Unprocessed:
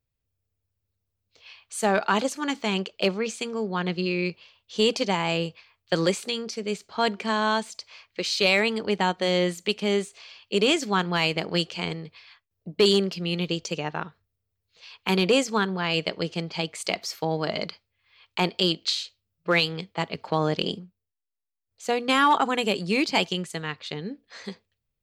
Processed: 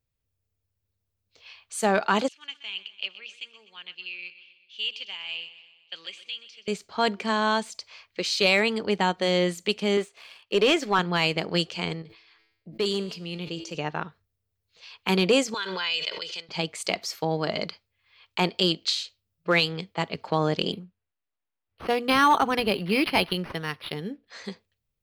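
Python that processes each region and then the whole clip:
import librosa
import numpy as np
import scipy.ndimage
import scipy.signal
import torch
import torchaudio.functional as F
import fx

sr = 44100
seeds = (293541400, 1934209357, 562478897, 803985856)

y = fx.chain(x, sr, fx.bandpass_q(hz=2900.0, q=5.0),
    fx.echo_feedback(ms=125, feedback_pct=55, wet_db=-15.0), at=(2.28, 6.68))
y = fx.chain(y, sr, fx.bass_treble(bass_db=-10, treble_db=-10),
    fx.leveller(passes=1), at=(9.97, 10.99))
y = fx.chain(y, sr, fx.comb_fb(f0_hz=110.0, decay_s=1.1, harmonics='all', damping=0.0, mix_pct=60),
    fx.sustainer(db_per_s=74.0), at=(12.02, 13.75))
y = fx.chain(y, sr, fx.bandpass_q(hz=3800.0, q=1.1),
    fx.comb(ms=2.0, depth=0.59),
    fx.pre_swell(db_per_s=25.0), at=(15.54, 16.49))
y = fx.chain(y, sr, fx.lowpass(hz=10000.0, slope=12),
    fx.high_shelf(hz=2100.0, db=5.0),
    fx.resample_linear(factor=6), at=(20.72, 24.27))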